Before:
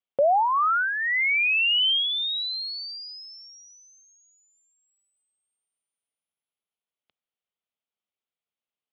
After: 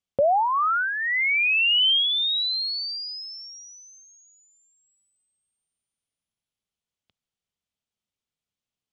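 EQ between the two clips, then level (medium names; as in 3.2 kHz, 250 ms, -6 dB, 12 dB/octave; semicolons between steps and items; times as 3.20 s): distance through air 91 m; tone controls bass +13 dB, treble +14 dB; 0.0 dB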